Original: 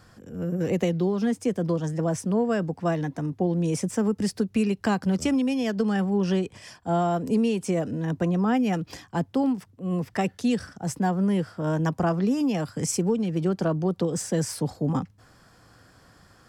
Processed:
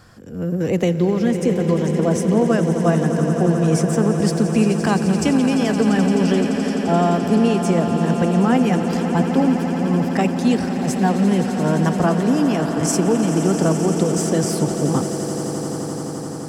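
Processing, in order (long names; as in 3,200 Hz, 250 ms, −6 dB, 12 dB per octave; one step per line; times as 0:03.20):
echo that builds up and dies away 86 ms, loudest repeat 8, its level −13 dB
level +5.5 dB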